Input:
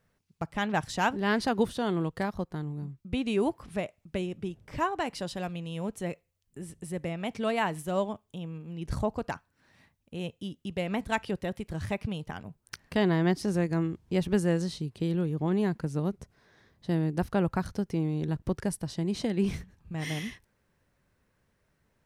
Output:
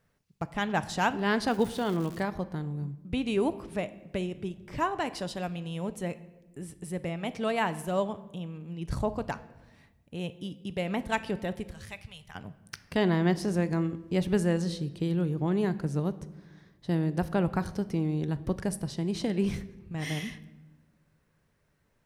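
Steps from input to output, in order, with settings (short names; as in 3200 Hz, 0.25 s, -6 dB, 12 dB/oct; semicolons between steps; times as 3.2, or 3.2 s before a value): 11.71–12.35 passive tone stack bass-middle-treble 10-0-10; shoebox room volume 660 m³, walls mixed, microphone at 0.31 m; 1.49–2.19 crackle 340/s -37 dBFS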